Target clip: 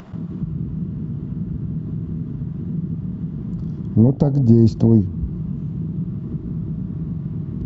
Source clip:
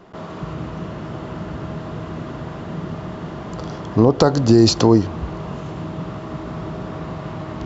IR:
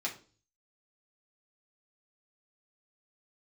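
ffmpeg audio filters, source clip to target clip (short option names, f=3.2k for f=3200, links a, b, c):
-af "lowshelf=f=280:t=q:w=1.5:g=8.5,afwtdn=0.178,acompressor=mode=upward:threshold=-15dB:ratio=2.5,volume=-6dB"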